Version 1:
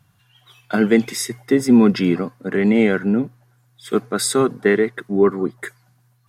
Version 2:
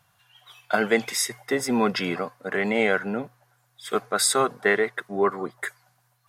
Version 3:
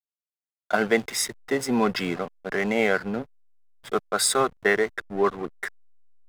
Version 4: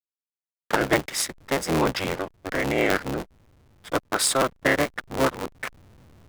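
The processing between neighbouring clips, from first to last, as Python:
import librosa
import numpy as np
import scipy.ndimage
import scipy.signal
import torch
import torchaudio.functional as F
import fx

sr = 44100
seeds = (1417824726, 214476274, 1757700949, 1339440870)

y1 = fx.low_shelf_res(x, sr, hz=440.0, db=-10.5, q=1.5)
y2 = fx.backlash(y1, sr, play_db=-30.0)
y3 = fx.cycle_switch(y2, sr, every=3, mode='inverted')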